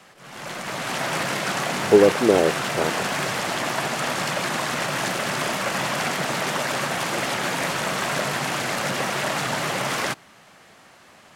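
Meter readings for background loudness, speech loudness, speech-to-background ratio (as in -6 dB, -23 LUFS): -24.5 LUFS, -20.0 LUFS, 4.5 dB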